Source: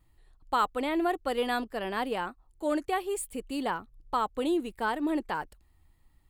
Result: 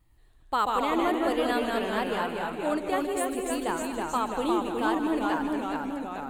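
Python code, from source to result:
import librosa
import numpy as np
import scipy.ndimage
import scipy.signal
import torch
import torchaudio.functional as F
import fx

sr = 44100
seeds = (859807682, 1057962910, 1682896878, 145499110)

y = fx.echo_heads(x, sr, ms=77, heads='second and third', feedback_pct=42, wet_db=-12)
y = fx.echo_pitch(y, sr, ms=106, semitones=-1, count=3, db_per_echo=-3.0)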